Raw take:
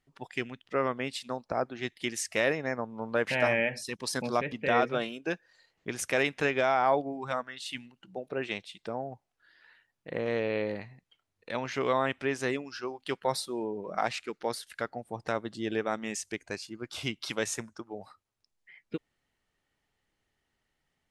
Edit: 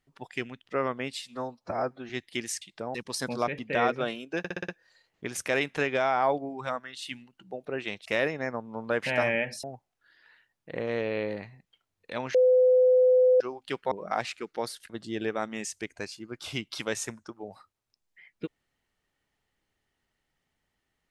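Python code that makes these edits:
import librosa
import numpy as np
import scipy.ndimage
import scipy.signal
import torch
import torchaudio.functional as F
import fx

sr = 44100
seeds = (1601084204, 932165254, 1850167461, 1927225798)

y = fx.edit(x, sr, fx.stretch_span(start_s=1.15, length_s=0.63, factor=1.5),
    fx.swap(start_s=2.3, length_s=1.58, other_s=8.69, other_length_s=0.33),
    fx.stutter(start_s=5.32, slice_s=0.06, count=6),
    fx.bleep(start_s=11.73, length_s=1.06, hz=507.0, db=-16.5),
    fx.cut(start_s=13.3, length_s=0.48),
    fx.cut(start_s=14.76, length_s=0.64), tone=tone)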